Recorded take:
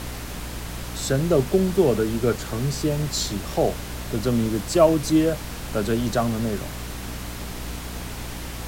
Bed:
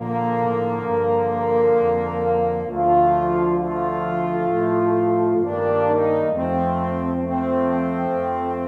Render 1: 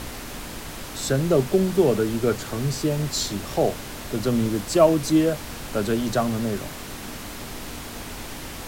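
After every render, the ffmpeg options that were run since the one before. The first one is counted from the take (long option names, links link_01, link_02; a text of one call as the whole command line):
ffmpeg -i in.wav -af "bandreject=frequency=60:width_type=h:width=4,bandreject=frequency=120:width_type=h:width=4,bandreject=frequency=180:width_type=h:width=4" out.wav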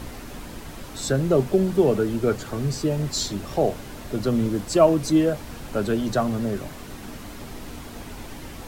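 ffmpeg -i in.wav -af "afftdn=noise_reduction=7:noise_floor=-36" out.wav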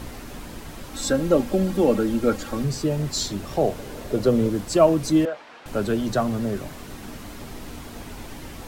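ffmpeg -i in.wav -filter_complex "[0:a]asettb=1/sr,asplit=3[link_01][link_02][link_03];[link_01]atrim=end=0.934[link_04];[link_02]atrim=start=0.93:end=2.64,asetpts=PTS-STARTPTS,afade=type=in:duration=0.004:curve=qsin,afade=type=out:start_time=1.706:duration=0.004:curve=qsin,aecho=1:1:3.7:0.72,atrim=end_sample=75411[link_05];[link_03]atrim=start=2.636[link_06];[link_04][link_05]acrossfade=duration=0.004:curve1=hsin:curve2=qsin[link_07];[link_07][link_06]acrossfade=duration=0.004:curve1=qsin:curve2=hsin,asettb=1/sr,asplit=3[link_08][link_09][link_10];[link_08]atrim=end=3.784[link_11];[link_09]atrim=start=3.78:end=4.5,asetpts=PTS-STARTPTS,afade=type=in:duration=0.004:curve=qsin,afade=type=out:start_time=0.716:duration=0.004:curve=qsin,equalizer=frequency=480:width=2:gain=9[link_12];[link_10]atrim=start=4.496[link_13];[link_11][link_12]acrossfade=duration=0.004:curve1=hsin:curve2=qsin[link_14];[link_14][link_13]acrossfade=duration=0.004:curve1=qsin:curve2=hsin,asettb=1/sr,asplit=3[link_15][link_16][link_17];[link_15]atrim=end=5.254[link_18];[link_16]atrim=start=5.25:end=5.66,asetpts=PTS-STARTPTS,afade=type=in:duration=0.004:curve=qsin,afade=type=out:start_time=0.406:duration=0.004:curve=qsin,highpass=620,lowpass=3100[link_19];[link_17]atrim=start=5.656[link_20];[link_18][link_19]acrossfade=duration=0.004:curve1=hsin:curve2=qsin[link_21];[link_21][link_20]acrossfade=duration=0.004:curve1=qsin:curve2=hsin" out.wav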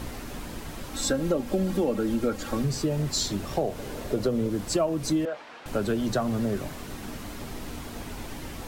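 ffmpeg -i in.wav -af "acompressor=threshold=-22dB:ratio=6" out.wav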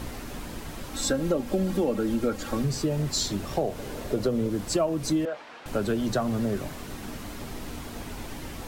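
ffmpeg -i in.wav -af anull out.wav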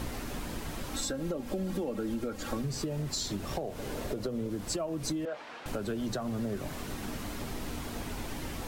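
ffmpeg -i in.wav -af "alimiter=limit=-18.5dB:level=0:latency=1:release=373,acompressor=threshold=-31dB:ratio=4" out.wav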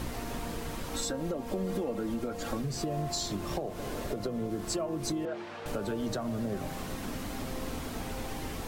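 ffmpeg -i in.wav -i bed.wav -filter_complex "[1:a]volume=-23dB[link_01];[0:a][link_01]amix=inputs=2:normalize=0" out.wav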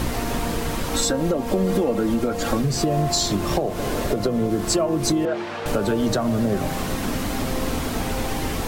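ffmpeg -i in.wav -af "volume=12dB" out.wav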